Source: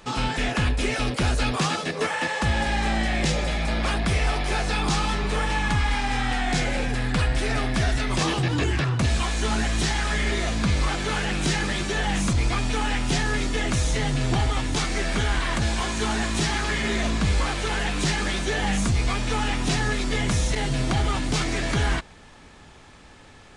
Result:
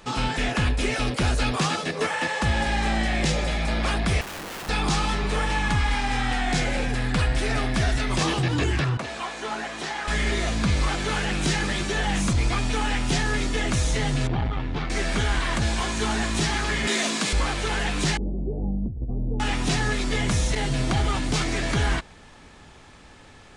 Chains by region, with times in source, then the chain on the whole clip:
4.21–4.69 s: steep low-pass 700 Hz + integer overflow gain 30.5 dB
8.97–10.08 s: high-pass 640 Hz + tilt EQ -3.5 dB/octave
14.27–14.90 s: distance through air 330 m + transformer saturation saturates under 130 Hz
16.87–17.33 s: high-pass 210 Hz 24 dB/octave + treble shelf 3.2 kHz +10.5 dB
18.17–19.40 s: Gaussian low-pass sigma 18 samples + compressor with a negative ratio -25 dBFS, ratio -0.5
whole clip: none

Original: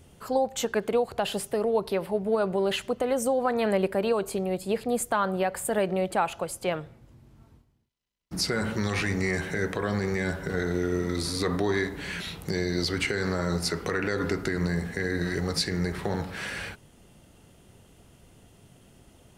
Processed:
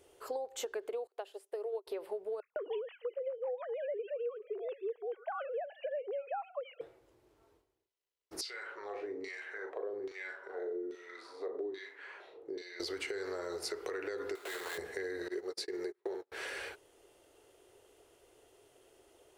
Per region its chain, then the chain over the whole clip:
1.07–1.87 s: brick-wall FIR high-pass 280 Hz + upward expansion 2.5:1, over -40 dBFS
2.40–6.81 s: formants replaced by sine waves + bands offset in time highs, lows 160 ms, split 2.4 kHz
8.41–12.80 s: LFO band-pass saw down 1.2 Hz 240–3800 Hz + doubling 39 ms -7 dB
14.35–14.78 s: frequency weighting ITU-R 468 + sample-rate reducer 5.7 kHz, jitter 20% + overload inside the chain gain 29.5 dB
15.28–16.32 s: high-pass 150 Hz + gate -31 dBFS, range -39 dB + peaking EQ 370 Hz +8.5 dB 0.42 oct
whole clip: resonant low shelf 270 Hz -13 dB, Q 3; compression 10:1, threshold -28 dBFS; peaking EQ 210 Hz -7 dB 0.54 oct; trim -7 dB

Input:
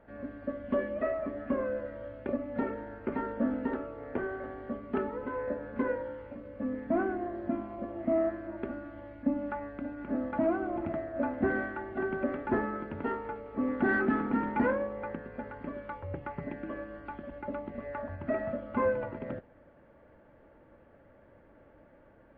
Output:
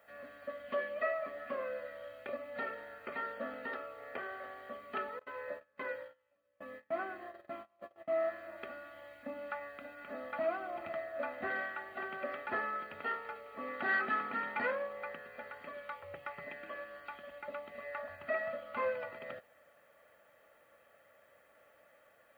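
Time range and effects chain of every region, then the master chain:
5.19–8.22 s: gate -38 dBFS, range -25 dB + comb of notches 240 Hz
whole clip: differentiator; comb 1.6 ms, depth 52%; trim +13.5 dB

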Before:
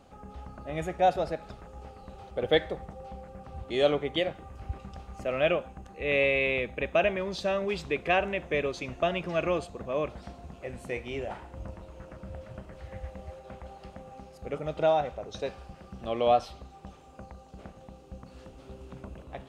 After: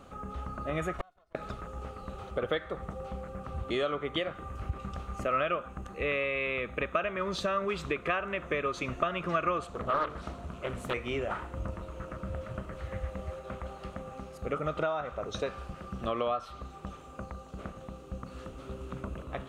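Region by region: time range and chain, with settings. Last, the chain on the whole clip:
0.93–1.35 s: comb filter that takes the minimum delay 1.4 ms + comb 2.8 ms, depth 46% + inverted gate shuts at -25 dBFS, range -41 dB
9.63–10.94 s: hum notches 50/100/150/200/250/300/350/400/450/500 Hz + loudspeaker Doppler distortion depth 0.68 ms
whole clip: dynamic bell 1.3 kHz, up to +8 dB, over -47 dBFS, Q 1.7; compression 6:1, threshold -33 dBFS; graphic EQ with 31 bands 800 Hz -6 dB, 1.25 kHz +9 dB, 5 kHz -6 dB; trim +4.5 dB

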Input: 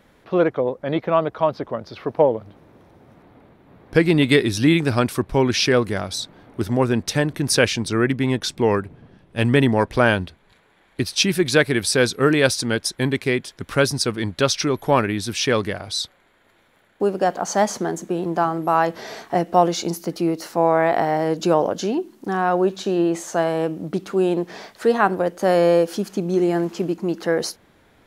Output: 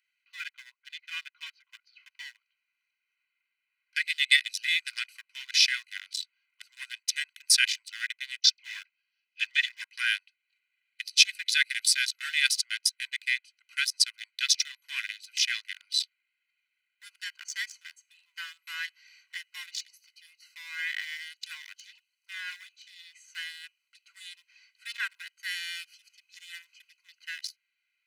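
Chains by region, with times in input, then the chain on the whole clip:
8.40–9.82 s: resonant high shelf 7.4 kHz -12.5 dB, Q 3 + phase dispersion lows, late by 42 ms, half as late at 1.4 kHz
whole clip: local Wiener filter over 25 samples; steep high-pass 1.8 kHz 48 dB/octave; comb 2 ms, depth 94%; trim -1 dB

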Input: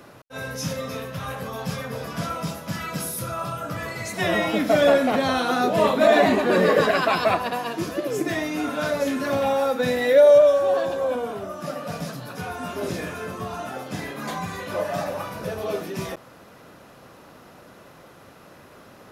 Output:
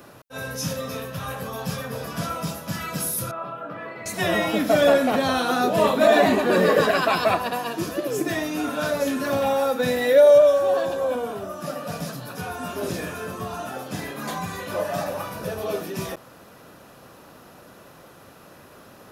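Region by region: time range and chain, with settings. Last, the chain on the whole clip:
3.31–4.06 s: high-pass 260 Hz + distance through air 490 m
whole clip: treble shelf 10 kHz +8 dB; band-stop 2.1 kHz, Q 16

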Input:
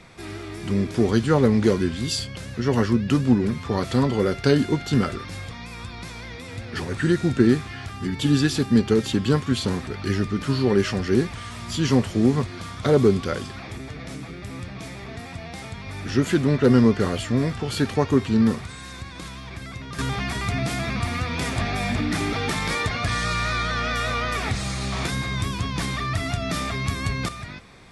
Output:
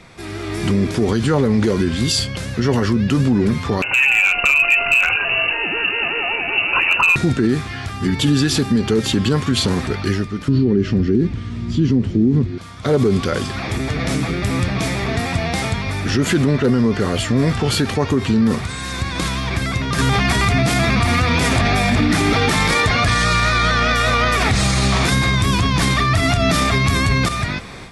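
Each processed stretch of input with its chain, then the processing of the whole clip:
3.82–7.16 s: frequency inversion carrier 2.8 kHz + compression 12:1, threshold -20 dBFS + hard clipper -19 dBFS
10.48–12.58 s: low-pass 5.2 kHz + resonant low shelf 460 Hz +13 dB, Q 1.5 + band-stop 1.1 kHz, Q 20
whole clip: level rider; peak limiter -11.5 dBFS; trim +4 dB

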